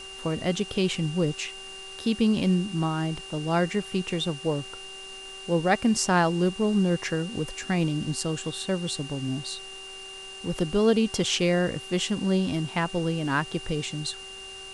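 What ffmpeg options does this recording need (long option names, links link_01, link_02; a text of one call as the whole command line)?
ffmpeg -i in.wav -af "adeclick=threshold=4,bandreject=frequency=384.9:width_type=h:width=4,bandreject=frequency=769.8:width_type=h:width=4,bandreject=frequency=1154.7:width_type=h:width=4,bandreject=frequency=1539.6:width_type=h:width=4,bandreject=frequency=2800:width=30,afftdn=noise_reduction=30:noise_floor=-41" out.wav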